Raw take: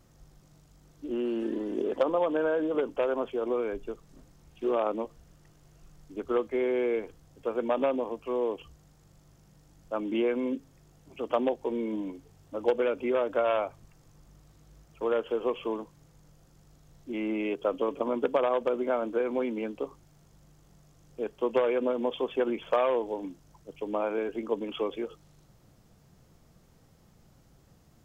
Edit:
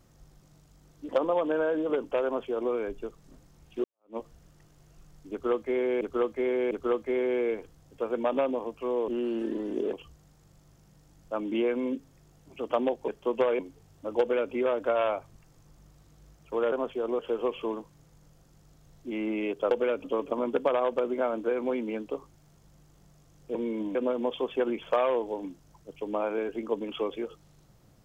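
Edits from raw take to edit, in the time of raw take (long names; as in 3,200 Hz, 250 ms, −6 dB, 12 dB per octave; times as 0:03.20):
0:01.09–0:01.94: move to 0:08.53
0:03.10–0:03.57: duplicate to 0:15.21
0:04.69–0:05.02: fade in exponential
0:06.16–0:06.86: repeat, 3 plays
0:11.68–0:12.08: swap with 0:21.24–0:21.75
0:12.69–0:13.02: duplicate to 0:17.73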